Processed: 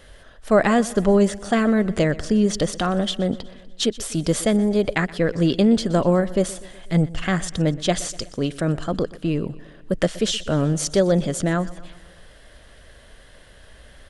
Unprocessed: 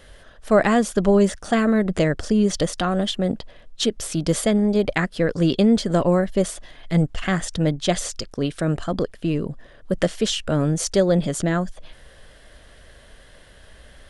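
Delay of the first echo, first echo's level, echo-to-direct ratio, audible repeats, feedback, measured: 123 ms, −19.5 dB, −17.5 dB, 4, 58%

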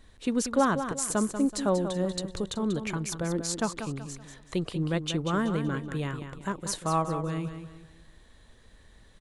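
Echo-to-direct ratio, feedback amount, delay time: −8.5 dB, 36%, 189 ms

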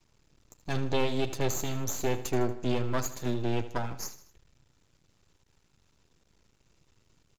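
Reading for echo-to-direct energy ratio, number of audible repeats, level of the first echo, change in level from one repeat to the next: −13.0 dB, 3, −14.0 dB, −6.0 dB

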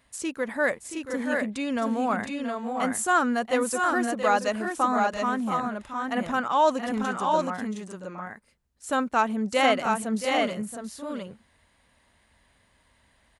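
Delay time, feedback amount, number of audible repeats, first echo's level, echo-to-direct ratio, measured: 677 ms, repeats not evenly spaced, 2, −10.0 dB, −3.0 dB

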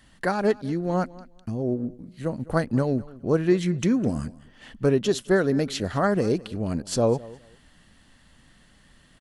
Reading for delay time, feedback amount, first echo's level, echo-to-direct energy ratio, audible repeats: 207 ms, 19%, −20.5 dB, −20.5 dB, 2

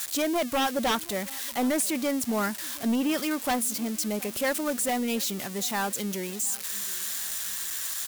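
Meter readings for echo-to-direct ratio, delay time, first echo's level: −21.0 dB, 721 ms, −22.0 dB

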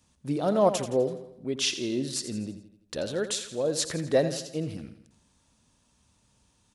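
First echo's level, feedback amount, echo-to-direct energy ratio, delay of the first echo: −11.5 dB, 49%, −10.5 dB, 84 ms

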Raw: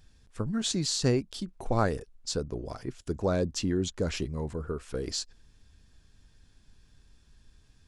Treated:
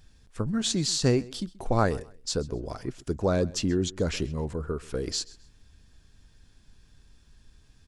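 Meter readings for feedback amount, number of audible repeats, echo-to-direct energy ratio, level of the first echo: 26%, 2, −21.0 dB, −21.5 dB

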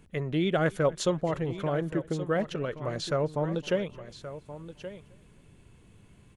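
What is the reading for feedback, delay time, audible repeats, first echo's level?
repeats not evenly spaced, 263 ms, 3, −23.0 dB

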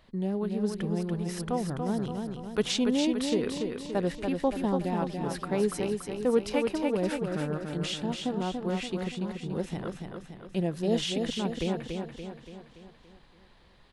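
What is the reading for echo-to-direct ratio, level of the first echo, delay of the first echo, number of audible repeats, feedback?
−3.5 dB, −5.0 dB, 286 ms, 6, 53%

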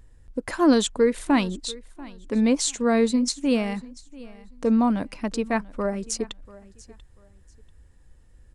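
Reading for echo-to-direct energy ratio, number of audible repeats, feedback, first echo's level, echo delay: −20.5 dB, 2, 24%, −20.5 dB, 689 ms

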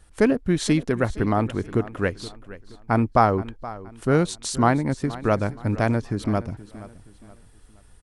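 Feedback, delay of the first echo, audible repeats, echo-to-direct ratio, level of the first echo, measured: 37%, 473 ms, 3, −16.5 dB, −17.0 dB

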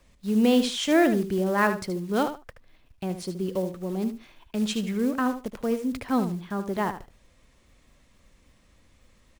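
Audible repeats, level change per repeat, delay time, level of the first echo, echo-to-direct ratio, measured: 2, −16.0 dB, 75 ms, −10.0 dB, −10.0 dB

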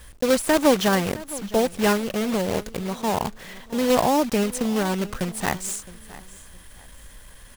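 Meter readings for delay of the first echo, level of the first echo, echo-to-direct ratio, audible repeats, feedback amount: 664 ms, −18.5 dB, −18.0 dB, 2, 28%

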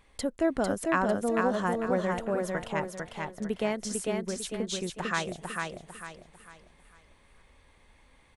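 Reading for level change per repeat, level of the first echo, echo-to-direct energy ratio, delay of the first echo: −9.0 dB, −3.5 dB, −3.0 dB, 449 ms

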